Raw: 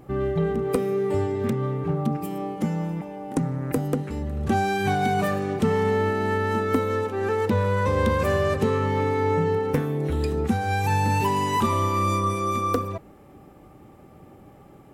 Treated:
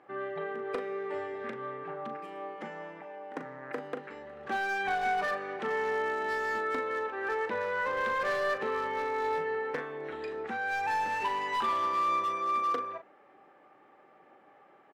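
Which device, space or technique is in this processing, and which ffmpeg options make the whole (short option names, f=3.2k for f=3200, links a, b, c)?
megaphone: -filter_complex "[0:a]highpass=580,lowpass=2.8k,equalizer=f=1.7k:t=o:w=0.51:g=6.5,asoftclip=type=hard:threshold=-21.5dB,asplit=2[a][b];[b]adelay=39,volume=-9dB[c];[a][c]amix=inputs=2:normalize=0,volume=-4.5dB"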